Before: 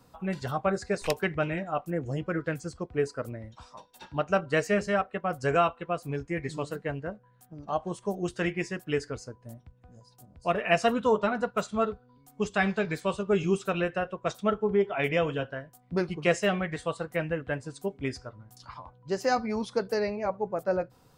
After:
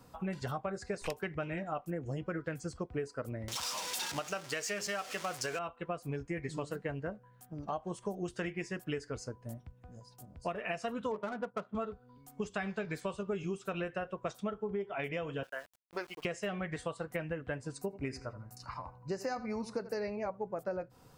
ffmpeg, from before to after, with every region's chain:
-filter_complex "[0:a]asettb=1/sr,asplit=3[s0][s1][s2];[s0]atrim=end=3.484[s3];[s1]atrim=start=3.48:end=5.59,asetpts=PTS-STARTPTS,afade=t=in:d=0.004:c=qsin,afade=t=out:st=2.106:d=0.004:c=qsin,aeval=exprs='val(0)+0.5*0.0168*sgn(val(0))':c=same,highpass=f=300:p=1,equalizer=f=5600:w=0.42:g=13[s4];[s2]atrim=start=5.586[s5];[s3][s4]acrossfade=d=0.004:c1=hsin:c2=qsin[s6];[s6][s5]acrossfade=d=0.004:c1=qsin:c2=hsin,asettb=1/sr,asplit=3[s7][s8][s9];[s7]atrim=end=11.114[s10];[s8]atrim=start=11.11:end=11.75,asetpts=PTS-STARTPTS,afade=t=in:d=0.004:c=qsin,afade=t=out:st=0.636:d=0.004:c=qsin,highpass=150,lowpass=2800,adynamicsmooth=sensitivity=5.5:basefreq=990[s11];[s9]atrim=start=11.746[s12];[s10][s11]acrossfade=d=0.004:c1=hsin:c2=qsin[s13];[s13][s12]acrossfade=d=0.004:c1=qsin:c2=hsin,asettb=1/sr,asplit=3[s14][s15][s16];[s14]atrim=end=15.434[s17];[s15]atrim=start=15.43:end=16.25,asetpts=PTS-STARTPTS,afade=t=in:d=0.004:c=qsin,afade=t=out:st=0.816:d=0.004:c=qsin,highpass=660,lowpass=6500,aeval=exprs='val(0)*gte(abs(val(0)),0.00251)':c=same[s18];[s16]atrim=start=16.246[s19];[s17][s18]acrossfade=d=0.004:c1=hsin:c2=qsin[s20];[s20][s19]acrossfade=d=0.004:c1=qsin:c2=hsin,asettb=1/sr,asplit=3[s21][s22][s23];[s21]atrim=end=17.754[s24];[s22]atrim=start=17.75:end=20.08,asetpts=PTS-STARTPTS,afade=t=in:d=0.004:c=qsin,afade=t=out:st=2.326:d=0.004:c=qsin,asuperstop=centerf=3300:order=4:qfactor=3.7,asplit=2[s25][s26];[s26]adelay=82,lowpass=f=3400:p=1,volume=0.158,asplit=2[s27][s28];[s28]adelay=82,lowpass=f=3400:p=1,volume=0.33,asplit=2[s29][s30];[s30]adelay=82,lowpass=f=3400:p=1,volume=0.33[s31];[s25][s27][s29][s31]amix=inputs=4:normalize=0,atrim=end_sample=102753[s32];[s23]atrim=start=20.076[s33];[s24][s32]acrossfade=d=0.004:c1=hsin:c2=qsin[s34];[s34][s33]acrossfade=d=0.004:c1=qsin:c2=hsin,equalizer=f=3900:w=4.2:g=-3,alimiter=limit=0.168:level=0:latency=1:release=371,acompressor=threshold=0.0178:ratio=6,volume=1.12"

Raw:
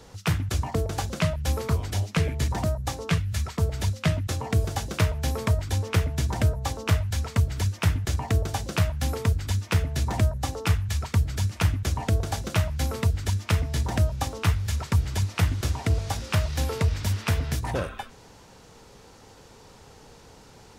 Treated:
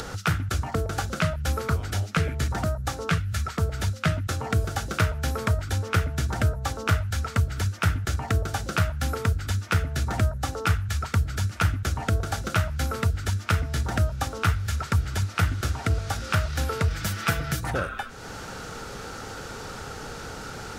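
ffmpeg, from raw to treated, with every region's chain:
-filter_complex "[0:a]asettb=1/sr,asplit=3[s0][s1][s2];[s0]atrim=end=16.904[s3];[s1]atrim=start=16.9:end=17.7,asetpts=PTS-STARTPTS,afade=t=in:d=0.004:c=qsin,afade=t=out:st=0.796:d=0.004:c=qsin,highshelf=f=11000:g=6.5,aecho=1:1:6:0.64,atrim=end_sample=35280[s4];[s2]atrim=start=17.696[s5];[s3][s4]acrossfade=d=0.004:c1=hsin:c2=qsin[s6];[s6][s5]acrossfade=d=0.004:c1=qsin:c2=hsin,equalizer=f=1400:w=3.4:g=11.5,bandreject=f=1000:w=9,acompressor=mode=upward:threshold=0.0708:ratio=2.5,volume=0.891"

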